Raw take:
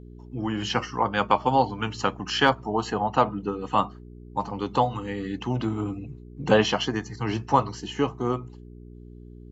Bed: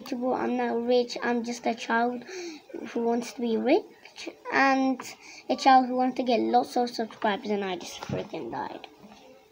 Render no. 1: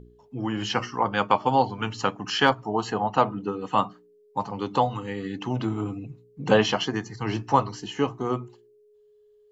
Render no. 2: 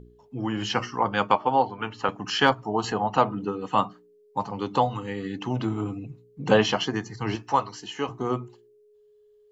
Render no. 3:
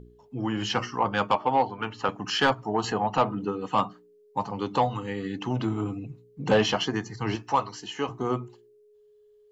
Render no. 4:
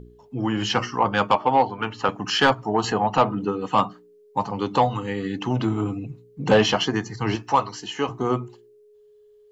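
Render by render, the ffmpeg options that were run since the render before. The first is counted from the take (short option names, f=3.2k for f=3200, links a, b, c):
-af "bandreject=f=60:t=h:w=4,bandreject=f=120:t=h:w=4,bandreject=f=180:t=h:w=4,bandreject=f=240:t=h:w=4,bandreject=f=300:t=h:w=4,bandreject=f=360:t=h:w=4"
-filter_complex "[0:a]asettb=1/sr,asplit=3[a][b][c];[a]atrim=end=1.354[d];[b]atrim=start=1.35:end=2.09,asetpts=PTS-STARTPTS,afade=t=in:d=0.004:c=qsin,afade=t=out:st=0.736:d=0.004:c=qsin,bass=f=250:g=-8,treble=f=4k:g=-15[e];[c]atrim=start=2.086[f];[d][e]acrossfade=d=0.004:c1=hsin:c2=qsin[g];[g][f]acrossfade=d=0.004:c1=qsin:c2=hsin,asettb=1/sr,asplit=3[h][i][j];[h]atrim=end=2.844[k];[i]atrim=start=2.84:end=3.45,asetpts=PTS-STARTPTS,afade=t=in:d=0.004:c=qsin,afade=t=out:st=0.606:d=0.004:c=qsin,acompressor=mode=upward:threshold=-25dB:ratio=2.5:attack=3.2:release=140:knee=2.83:detection=peak[l];[j]atrim=start=3.446[m];[k][l]acrossfade=d=0.004:c1=hsin:c2=qsin[n];[n][m]acrossfade=d=0.004:c1=qsin:c2=hsin,asettb=1/sr,asplit=3[o][p][q];[o]atrim=end=7.354[r];[p]atrim=start=7.35:end=8.09,asetpts=PTS-STARTPTS,afade=t=in:d=0.004:c=qsin,afade=t=out:st=0.736:d=0.004:c=qsin,lowshelf=f=390:g=-10.5[s];[q]atrim=start=8.086[t];[r][s]acrossfade=d=0.004:c1=hsin:c2=qsin[u];[u][t]acrossfade=d=0.004:c1=qsin:c2=hsin"
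-af "asoftclip=type=tanh:threshold=-12dB"
-af "volume=4.5dB"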